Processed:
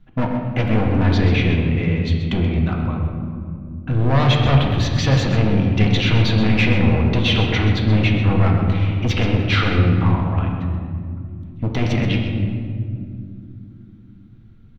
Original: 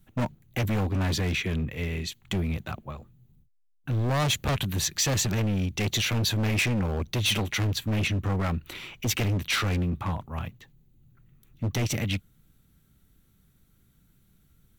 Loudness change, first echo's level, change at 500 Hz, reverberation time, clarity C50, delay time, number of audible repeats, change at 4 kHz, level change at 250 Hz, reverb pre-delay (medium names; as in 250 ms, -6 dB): +9.0 dB, -9.5 dB, +10.0 dB, 2.5 s, 2.5 dB, 129 ms, 1, +5.0 dB, +11.5 dB, 3 ms